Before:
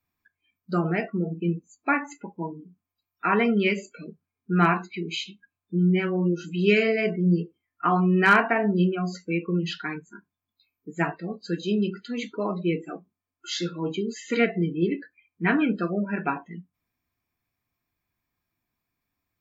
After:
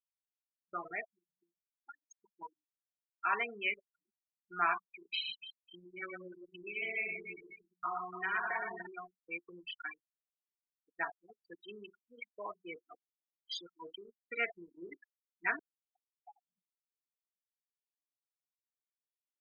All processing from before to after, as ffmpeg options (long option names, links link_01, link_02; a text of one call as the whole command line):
ffmpeg -i in.wav -filter_complex "[0:a]asettb=1/sr,asplit=3[link_01][link_02][link_03];[link_01]atrim=end=1.044[link_04];[link_02]atrim=start=1.04:end=2.13,asetpts=PTS-STARTPTS,afade=type=in:duration=0.004:curve=qsin,afade=type=out:start_time=1.086:duration=0.004:curve=qsin,acompressor=threshold=-36dB:ratio=5:attack=3.2:release=140:knee=1:detection=peak,aemphasis=mode=production:type=50fm[link_05];[link_03]atrim=start=2.126[link_06];[link_04][link_05]acrossfade=duration=0.004:curve1=hsin:curve2=qsin[link_07];[link_07][link_06]acrossfade=duration=0.004:curve1=qsin:curve2=hsin,asettb=1/sr,asplit=3[link_08][link_09][link_10];[link_08]atrim=end=5.124[link_11];[link_09]atrim=start=5.12:end=8.87,asetpts=PTS-STARTPTS,afade=type=in:duration=0.004:curve=qsin,afade=type=out:start_time=3.746:duration=0.004:curve=qsin,aecho=1:1:5.4:0.59,atrim=end_sample=165375,acompressor=threshold=-22dB:ratio=12:attack=3.2:release=140:knee=1:detection=peak,aecho=1:1:40|101|115|143|291|542:0.237|0.178|0.631|0.112|0.422|0.282,atrim=end_sample=165375[link_12];[link_10]atrim=start=8.866[link_13];[link_11][link_12]acrossfade=duration=0.004:curve1=hsin:curve2=qsin[link_14];[link_14][link_13]acrossfade=duration=0.004:curve1=qsin:curve2=hsin,asettb=1/sr,asplit=3[link_15][link_16][link_17];[link_15]atrim=end=15.594[link_18];[link_16]atrim=start=15.59:end=16.46,asetpts=PTS-STARTPTS,afade=type=in:duration=0.004:curve=qsin,afade=type=out:start_time=0.866:duration=0.004:curve=qsin,asuperpass=centerf=800:order=8:qfactor=5.2,acompressor=threshold=-37dB:ratio=4:attack=3.2:release=140:knee=1:detection=peak[link_19];[link_17]atrim=start=16.456[link_20];[link_18][link_19]acrossfade=duration=0.004:curve1=hsin:curve2=qsin[link_21];[link_21][link_20]acrossfade=duration=0.004:curve1=qsin:curve2=hsin,afftfilt=real='re*gte(hypot(re,im),0.0794)':imag='im*gte(hypot(re,im),0.0794)':win_size=1024:overlap=0.75,highpass=910,anlmdn=0.158,volume=-6.5dB" out.wav